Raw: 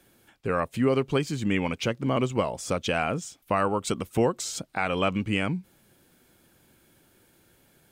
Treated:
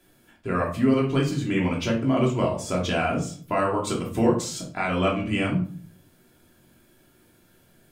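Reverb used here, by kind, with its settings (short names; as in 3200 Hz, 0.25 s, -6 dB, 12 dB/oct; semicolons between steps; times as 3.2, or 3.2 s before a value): shoebox room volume 390 m³, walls furnished, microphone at 3 m; gain -3.5 dB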